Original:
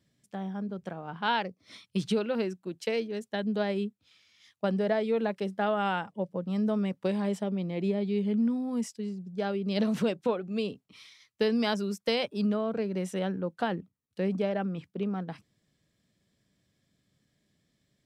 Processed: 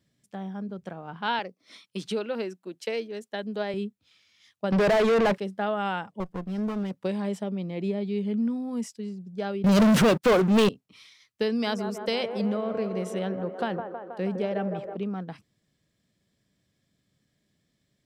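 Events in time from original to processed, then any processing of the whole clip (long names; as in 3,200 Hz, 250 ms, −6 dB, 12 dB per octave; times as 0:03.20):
0:01.39–0:03.74: high-pass filter 250 Hz
0:04.72–0:05.38: mid-hump overdrive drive 34 dB, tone 2,100 Hz, clips at −14.5 dBFS
0:06.20–0:06.91: lower of the sound and its delayed copy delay 0.62 ms
0:09.64–0:10.69: leveller curve on the samples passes 5
0:11.51–0:14.97: delay with a band-pass on its return 160 ms, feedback 70%, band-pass 680 Hz, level −5 dB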